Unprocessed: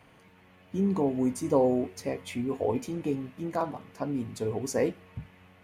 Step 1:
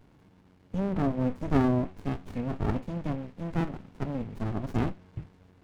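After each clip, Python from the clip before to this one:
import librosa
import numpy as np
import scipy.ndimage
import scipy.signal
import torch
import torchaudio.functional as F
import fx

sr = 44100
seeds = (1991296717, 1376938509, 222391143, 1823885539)

y = fx.env_lowpass_down(x, sr, base_hz=2800.0, full_db=-24.5)
y = fx.running_max(y, sr, window=65)
y = F.gain(torch.from_numpy(y), 1.5).numpy()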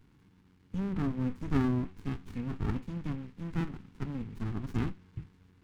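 y = fx.peak_eq(x, sr, hz=620.0, db=-15.0, octaves=0.77)
y = F.gain(torch.from_numpy(y), -2.5).numpy()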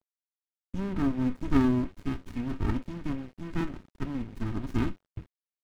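y = x + 0.47 * np.pad(x, (int(3.2 * sr / 1000.0), 0))[:len(x)]
y = np.sign(y) * np.maximum(np.abs(y) - 10.0 ** (-51.0 / 20.0), 0.0)
y = F.gain(torch.from_numpy(y), 4.0).numpy()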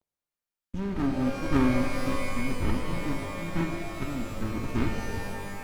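y = fx.rev_shimmer(x, sr, seeds[0], rt60_s=2.0, semitones=12, shimmer_db=-2, drr_db=5.0)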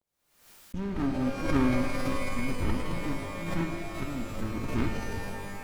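y = fx.pre_swell(x, sr, db_per_s=83.0)
y = F.gain(torch.from_numpy(y), -2.0).numpy()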